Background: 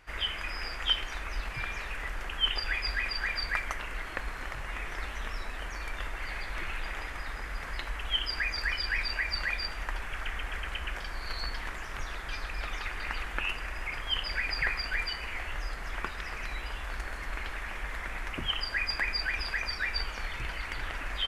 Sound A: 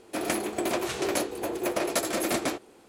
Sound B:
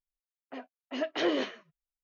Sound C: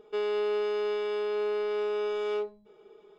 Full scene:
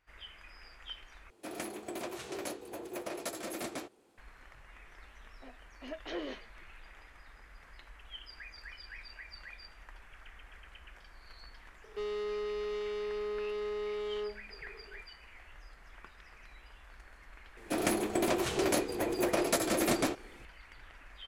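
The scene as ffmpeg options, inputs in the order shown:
ffmpeg -i bed.wav -i cue0.wav -i cue1.wav -i cue2.wav -filter_complex "[1:a]asplit=2[link_01][link_02];[0:a]volume=-17.5dB[link_03];[3:a]asoftclip=type=tanh:threshold=-32.5dB[link_04];[link_02]lowshelf=frequency=210:gain=7[link_05];[link_03]asplit=2[link_06][link_07];[link_06]atrim=end=1.304[link_08];[link_01]atrim=end=2.88,asetpts=PTS-STARTPTS,volume=-12dB[link_09];[link_07]atrim=start=4.176[link_10];[2:a]atrim=end=2.03,asetpts=PTS-STARTPTS,volume=-11dB,afade=type=in:duration=0.004:curve=hsin,afade=type=out:start_time=2.026:duration=0.004:curve=hsin,adelay=4900[link_11];[link_04]atrim=end=3.18,asetpts=PTS-STARTPTS,volume=-1.5dB,afade=type=in:duration=0.004:curve=hsin,afade=type=out:start_time=3.176:duration=0.004:curve=hsin,adelay=11840[link_12];[link_05]atrim=end=2.88,asetpts=PTS-STARTPTS,volume=-3dB,afade=type=in:duration=0.004:curve=hsin,afade=type=out:start_time=2.876:duration=0.004:curve=hsin,adelay=17570[link_13];[link_08][link_09]acrossfade=duration=0.004:curve1=hsin:curve2=hsin[link_14];[link_14][link_10]acrossfade=duration=0.004:curve1=hsin:curve2=hsin[link_15];[link_15][link_11][link_12][link_13]amix=inputs=4:normalize=0" out.wav

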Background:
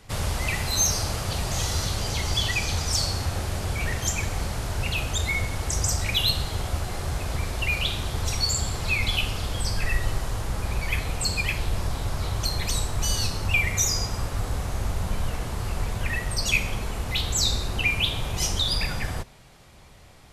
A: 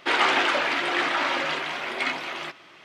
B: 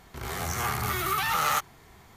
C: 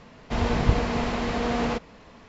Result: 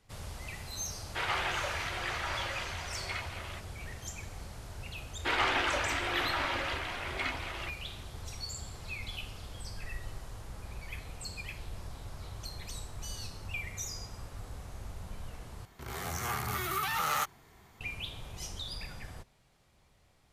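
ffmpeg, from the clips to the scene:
ffmpeg -i bed.wav -i cue0.wav -i cue1.wav -filter_complex "[1:a]asplit=2[link_01][link_02];[0:a]volume=-16dB[link_03];[link_01]highpass=frequency=390:width=0.5412,highpass=frequency=390:width=1.3066[link_04];[link_03]asplit=2[link_05][link_06];[link_05]atrim=end=15.654[link_07];[2:a]atrim=end=2.16,asetpts=PTS-STARTPTS,volume=-5.5dB[link_08];[link_06]atrim=start=17.806[link_09];[link_04]atrim=end=2.84,asetpts=PTS-STARTPTS,volume=-11.5dB,afade=type=in:duration=0.004:curve=hsin,afade=type=out:start_time=2.836:duration=0.004:curve=hsin,adelay=1090[link_10];[link_02]atrim=end=2.84,asetpts=PTS-STARTPTS,volume=-8dB,afade=type=in:duration=0.004:curve=hsin,afade=type=out:start_time=2.836:duration=0.004:curve=hsin,adelay=5190[link_11];[link_07][link_08]acrossfade=duration=0.004:curve1=hsin:curve2=hsin[link_12];[link_12][link_09]acrossfade=duration=0.004:curve1=hsin:curve2=hsin[link_13];[link_13][link_10][link_11]amix=inputs=3:normalize=0" out.wav

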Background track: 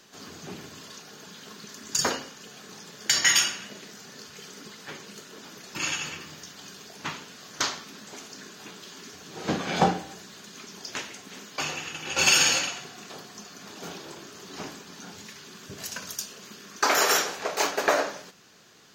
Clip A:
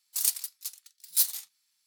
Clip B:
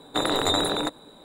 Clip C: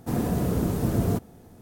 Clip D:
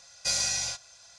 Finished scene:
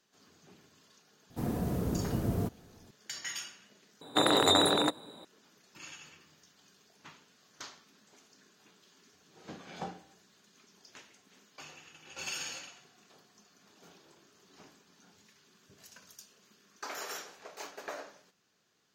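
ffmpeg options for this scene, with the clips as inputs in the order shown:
ffmpeg -i bed.wav -i cue0.wav -i cue1.wav -i cue2.wav -filter_complex "[0:a]volume=-19dB[link_01];[3:a]equalizer=frequency=8900:width_type=o:width=1:gain=-2.5[link_02];[2:a]highpass=100[link_03];[link_01]asplit=2[link_04][link_05];[link_04]atrim=end=4.014[link_06];[link_03]atrim=end=1.24,asetpts=PTS-STARTPTS,volume=-1dB[link_07];[link_05]atrim=start=5.246[link_08];[link_02]atrim=end=1.61,asetpts=PTS-STARTPTS,volume=-7.5dB,afade=type=in:duration=0.004:curve=hsin,afade=type=out:start_time=1.606:duration=0.004:curve=hsin,adelay=1300[link_09];[link_06][link_07]acrossfade=duration=0.004:curve1=hsin:curve2=hsin[link_10];[link_10][link_08]acrossfade=duration=0.004:curve1=hsin:curve2=hsin[link_11];[link_11][link_09]amix=inputs=2:normalize=0" out.wav

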